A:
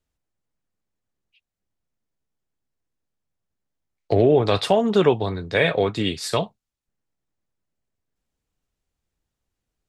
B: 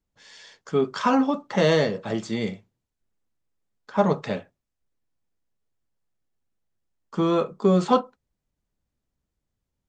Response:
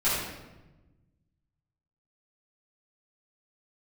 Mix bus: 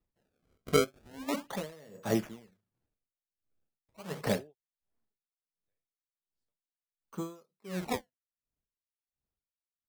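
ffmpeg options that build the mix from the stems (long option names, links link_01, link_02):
-filter_complex "[0:a]acompressor=threshold=-27dB:ratio=16,adelay=150,volume=-7.5dB[link_01];[1:a]acrusher=samples=28:mix=1:aa=0.000001:lfo=1:lforange=44.8:lforate=0.38,volume=-0.5dB,afade=type=out:start_time=4.77:duration=0.51:silence=0.316228,asplit=2[link_02][link_03];[link_03]apad=whole_len=442423[link_04];[link_01][link_04]sidechaingate=range=-58dB:threshold=-45dB:ratio=16:detection=peak[link_05];[link_05][link_02]amix=inputs=2:normalize=0,aeval=exprs='val(0)*pow(10,-33*(0.5-0.5*cos(2*PI*1.4*n/s))/20)':channel_layout=same"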